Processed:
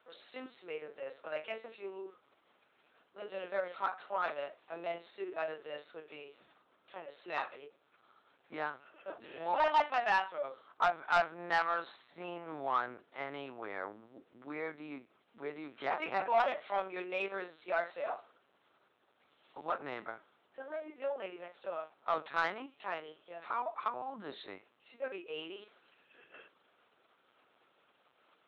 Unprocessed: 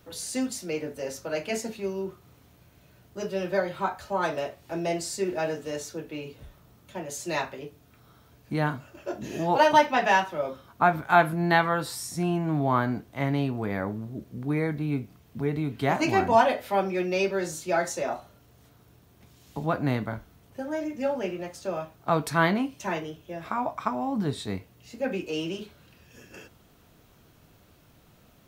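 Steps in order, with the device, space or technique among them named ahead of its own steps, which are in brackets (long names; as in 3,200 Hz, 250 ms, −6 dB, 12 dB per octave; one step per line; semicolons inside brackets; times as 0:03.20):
talking toy (linear-prediction vocoder at 8 kHz pitch kept; high-pass filter 510 Hz 12 dB per octave; parametric band 1,300 Hz +4.5 dB 0.4 octaves; soft clipping −14 dBFS, distortion −14 dB)
level −6.5 dB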